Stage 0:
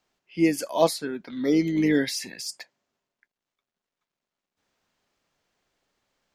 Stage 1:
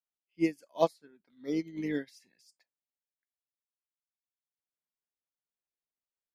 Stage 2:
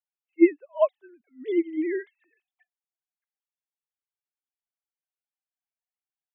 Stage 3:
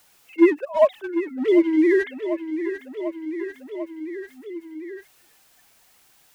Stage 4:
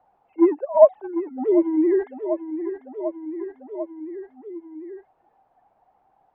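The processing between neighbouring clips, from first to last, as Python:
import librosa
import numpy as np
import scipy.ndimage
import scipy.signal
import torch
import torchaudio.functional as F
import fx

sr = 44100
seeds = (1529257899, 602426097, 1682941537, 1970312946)

y1 = fx.upward_expand(x, sr, threshold_db=-32.0, expansion=2.5)
y1 = y1 * 10.0 ** (-4.5 / 20.0)
y2 = fx.sine_speech(y1, sr)
y2 = y2 * 10.0 ** (8.0 / 20.0)
y3 = fx.leveller(y2, sr, passes=1)
y3 = fx.echo_feedback(y3, sr, ms=745, feedback_pct=53, wet_db=-20.0)
y3 = fx.env_flatten(y3, sr, amount_pct=50)
y4 = fx.lowpass_res(y3, sr, hz=790.0, q=5.4)
y4 = y4 * 10.0 ** (-3.5 / 20.0)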